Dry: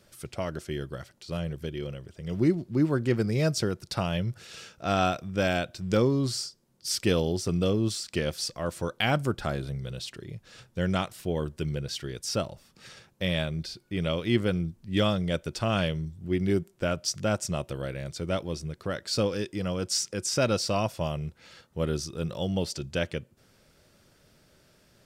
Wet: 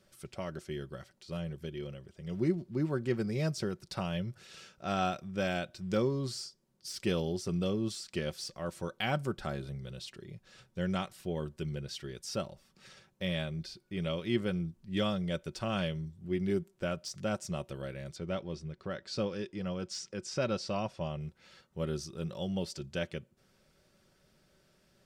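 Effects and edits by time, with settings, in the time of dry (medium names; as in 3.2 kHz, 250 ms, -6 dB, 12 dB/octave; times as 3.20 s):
18.16–21.20 s: distance through air 78 m
whole clip: de-esser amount 60%; treble shelf 9.2 kHz -4 dB; comb 5.3 ms, depth 35%; trim -7 dB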